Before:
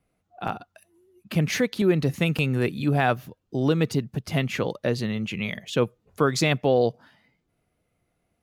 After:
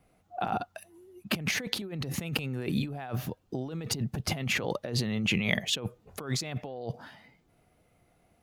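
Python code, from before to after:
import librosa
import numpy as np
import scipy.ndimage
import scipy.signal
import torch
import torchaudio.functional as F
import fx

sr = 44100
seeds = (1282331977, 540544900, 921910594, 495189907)

y = fx.peak_eq(x, sr, hz=770.0, db=4.5, octaves=0.5)
y = fx.over_compress(y, sr, threshold_db=-32.0, ratio=-1.0)
y = y * librosa.db_to_amplitude(-1.0)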